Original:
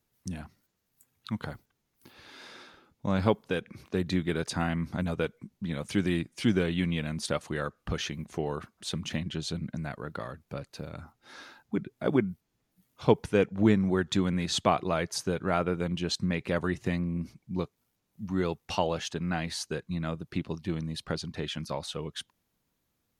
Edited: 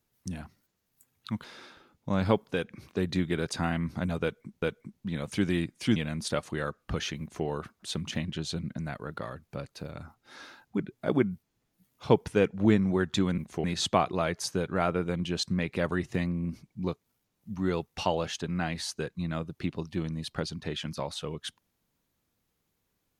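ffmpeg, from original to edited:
-filter_complex "[0:a]asplit=6[a][b][c][d][e][f];[a]atrim=end=1.442[g];[b]atrim=start=2.408:end=5.592[h];[c]atrim=start=5.188:end=6.532[i];[d]atrim=start=6.938:end=14.362[j];[e]atrim=start=8.178:end=8.442[k];[f]atrim=start=14.358[l];[g][h]acrossfade=d=0.004:c1=hsin:c2=hsin[m];[m][i]acrossfade=d=0.004:c1=hsin:c2=hsin[n];[n][j]acrossfade=d=0.004:c1=hsin:c2=hsin[o];[o][k]acrossfade=d=0.004:c1=hsin:c2=hsin[p];[p][l]acrossfade=d=0.004:c1=hsin:c2=hsin"

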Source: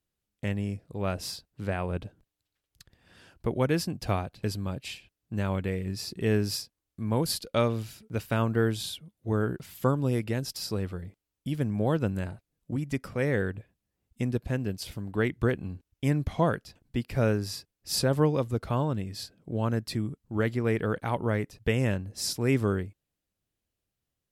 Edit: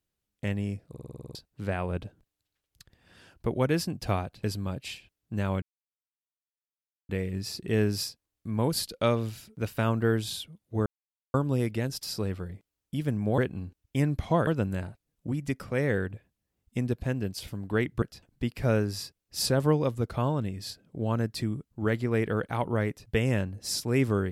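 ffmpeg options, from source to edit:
-filter_complex "[0:a]asplit=16[a][b][c][d][e][f][g][h][i][j][k][l][m][n][o][p];[a]atrim=end=0.952[q];[b]atrim=start=0.898:end=0.952[r];[c]atrim=start=0.898:end=0.952[s];[d]atrim=start=0.898:end=0.952[t];[e]atrim=start=0.898:end=0.952[u];[f]atrim=start=0.898:end=0.952[v];[g]atrim=start=0.898:end=0.952[w];[h]atrim=start=0.898:end=0.952[x];[i]atrim=start=0.898:end=0.952[y];[j]atrim=start=1.348:end=5.62,asetpts=PTS-STARTPTS,afade=t=out:st=4.268:d=0.004:c=hsin,apad=pad_dur=1.47[z];[k]atrim=start=5.62:end=9.39,asetpts=PTS-STARTPTS,afade=t=in:d=0.004:c=hsin,afade=t=out:st=3.766:d=0.004:c=hsin[aa];[l]atrim=start=9.39:end=9.87,asetpts=PTS-STARTPTS,volume=0[ab];[m]atrim=start=9.87:end=11.912,asetpts=PTS-STARTPTS,afade=t=in:d=0.004:c=hsin[ac];[n]atrim=start=15.458:end=16.552[ad];[o]atrim=start=11.908:end=15.462[ae];[p]atrim=start=16.548[af];[q][r]acrossfade=d=0.004:c1=hsin:c2=hsin[ag];[ag][s]acrossfade=d=0.004:c1=hsin:c2=hsin[ah];[ah][t]acrossfade=d=0.004:c1=hsin:c2=hsin[ai];[ai][u]acrossfade=d=0.004:c1=hsin:c2=hsin[aj];[aj][v]acrossfade=d=0.004:c1=hsin:c2=hsin[ak];[ak][w]acrossfade=d=0.004:c1=hsin:c2=hsin[al];[al][x]acrossfade=d=0.004:c1=hsin:c2=hsin[am];[am][y]acrossfade=d=0.004:c1=hsin:c2=hsin[an];[z][aa][ab][ac]concat=n=4:v=0:a=1[ao];[an][ao]acrossfade=d=0.004:c1=hsin:c2=hsin[ap];[ap][ad]acrossfade=d=0.004:c1=hsin:c2=hsin[aq];[aq][ae]acrossfade=d=0.004:c1=hsin:c2=hsin[ar];[ar][af]acrossfade=d=0.004:c1=hsin:c2=hsin"

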